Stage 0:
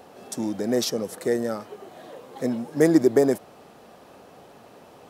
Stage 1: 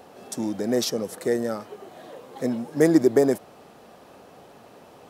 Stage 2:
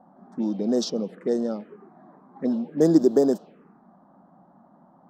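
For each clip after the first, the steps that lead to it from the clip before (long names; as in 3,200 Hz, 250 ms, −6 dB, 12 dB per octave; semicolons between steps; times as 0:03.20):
no processing that can be heard
low shelf with overshoot 140 Hz −9 dB, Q 3; low-pass that shuts in the quiet parts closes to 780 Hz, open at −15 dBFS; phaser swept by the level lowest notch 410 Hz, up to 2,200 Hz, full sweep at −19.5 dBFS; level −1.5 dB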